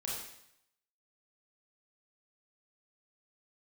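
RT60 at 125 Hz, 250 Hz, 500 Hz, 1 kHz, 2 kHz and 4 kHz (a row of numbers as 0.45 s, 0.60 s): 0.85 s, 0.70 s, 0.75 s, 0.75 s, 0.80 s, 0.75 s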